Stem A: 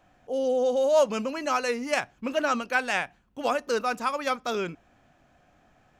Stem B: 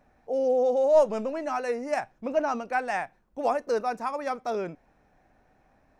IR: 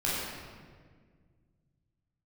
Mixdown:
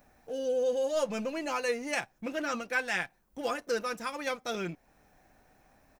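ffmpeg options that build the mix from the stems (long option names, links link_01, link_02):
-filter_complex "[0:a]aecho=1:1:5.8:0.58,aeval=exprs='sgn(val(0))*max(abs(val(0))-0.00355,0)':channel_layout=same,volume=-6dB[link_01];[1:a]aemphasis=mode=production:type=75kf,acompressor=threshold=-48dB:ratio=1.5,volume=-0.5dB[link_02];[link_01][link_02]amix=inputs=2:normalize=0"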